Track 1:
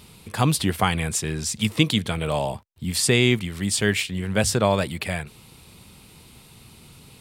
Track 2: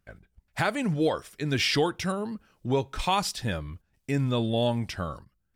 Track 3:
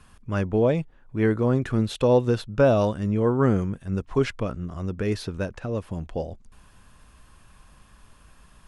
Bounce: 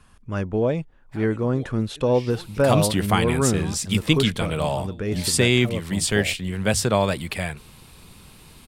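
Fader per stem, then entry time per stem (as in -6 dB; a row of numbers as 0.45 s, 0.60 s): 0.0 dB, -18.0 dB, -1.0 dB; 2.30 s, 0.55 s, 0.00 s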